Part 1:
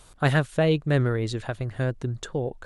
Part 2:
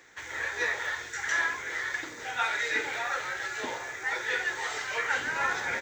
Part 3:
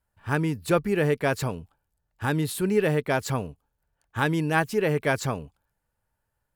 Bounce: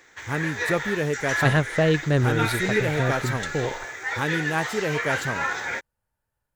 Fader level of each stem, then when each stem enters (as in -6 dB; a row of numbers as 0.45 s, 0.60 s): +1.0 dB, +2.0 dB, -2.5 dB; 1.20 s, 0.00 s, 0.00 s